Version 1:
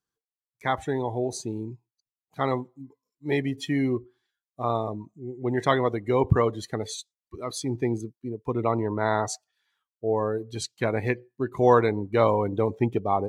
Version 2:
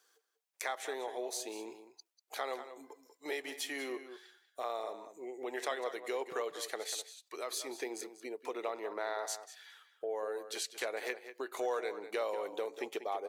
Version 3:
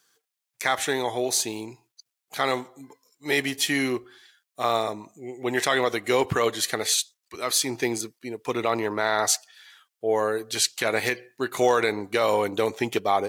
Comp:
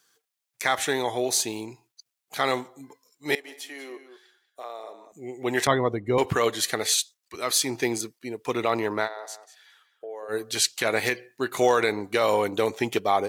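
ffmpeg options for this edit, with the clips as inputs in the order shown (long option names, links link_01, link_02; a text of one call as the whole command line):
ffmpeg -i take0.wav -i take1.wav -i take2.wav -filter_complex "[1:a]asplit=2[link_01][link_02];[2:a]asplit=4[link_03][link_04][link_05][link_06];[link_03]atrim=end=3.352[link_07];[link_01]atrim=start=3.348:end=5.122[link_08];[link_04]atrim=start=5.118:end=5.672[link_09];[0:a]atrim=start=5.668:end=6.182[link_10];[link_05]atrim=start=6.178:end=9.09[link_11];[link_02]atrim=start=9.03:end=10.34[link_12];[link_06]atrim=start=10.28[link_13];[link_07][link_08]acrossfade=duration=0.004:curve1=hsin:curve2=hsin[link_14];[link_14][link_09]acrossfade=duration=0.004:curve1=hsin:curve2=hsin[link_15];[link_15][link_10]acrossfade=duration=0.004:curve1=hsin:curve2=hsin[link_16];[link_16][link_11]acrossfade=duration=0.004:curve1=hsin:curve2=hsin[link_17];[link_17][link_12]acrossfade=duration=0.06:curve1=tri:curve2=tri[link_18];[link_18][link_13]acrossfade=duration=0.06:curve1=tri:curve2=tri" out.wav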